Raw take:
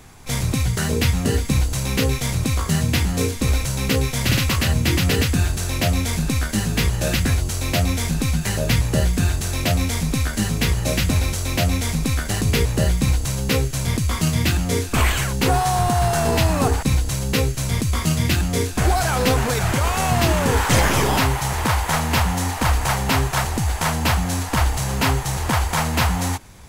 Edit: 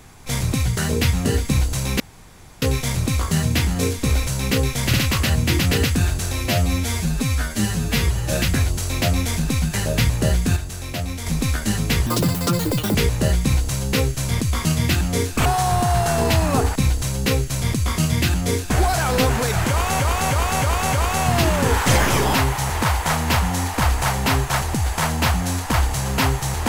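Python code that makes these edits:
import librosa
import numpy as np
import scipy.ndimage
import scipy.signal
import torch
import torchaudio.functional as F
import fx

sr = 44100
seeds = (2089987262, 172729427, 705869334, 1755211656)

y = fx.edit(x, sr, fx.insert_room_tone(at_s=2.0, length_s=0.62),
    fx.stretch_span(start_s=5.71, length_s=1.33, factor=1.5),
    fx.clip_gain(start_s=9.28, length_s=0.7, db=-7.0),
    fx.speed_span(start_s=10.78, length_s=1.73, speed=1.96),
    fx.cut(start_s=15.02, length_s=0.51),
    fx.repeat(start_s=19.76, length_s=0.31, count=5), tone=tone)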